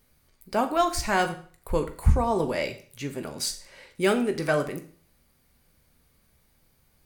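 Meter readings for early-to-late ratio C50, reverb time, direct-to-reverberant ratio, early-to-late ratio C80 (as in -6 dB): 12.5 dB, 0.45 s, 6.5 dB, 15.5 dB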